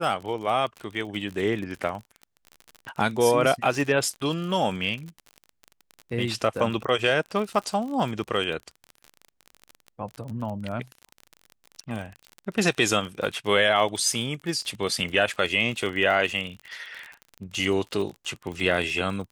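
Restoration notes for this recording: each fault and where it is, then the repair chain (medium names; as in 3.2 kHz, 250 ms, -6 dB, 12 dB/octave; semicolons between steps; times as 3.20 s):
crackle 39 per s -31 dBFS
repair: de-click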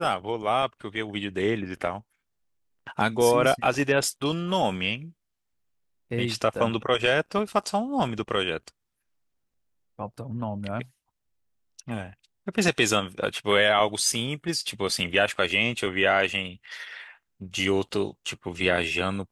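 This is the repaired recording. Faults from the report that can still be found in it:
nothing left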